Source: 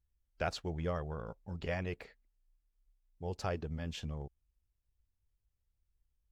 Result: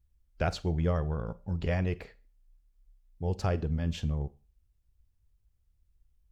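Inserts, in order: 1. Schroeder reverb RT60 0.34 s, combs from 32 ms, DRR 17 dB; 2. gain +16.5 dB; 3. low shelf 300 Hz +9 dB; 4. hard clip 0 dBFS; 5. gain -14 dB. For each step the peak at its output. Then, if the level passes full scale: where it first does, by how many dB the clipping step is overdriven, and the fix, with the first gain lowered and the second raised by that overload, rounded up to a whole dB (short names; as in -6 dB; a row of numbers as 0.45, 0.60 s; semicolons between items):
-20.5, -4.0, -2.5, -2.5, -16.5 dBFS; no overload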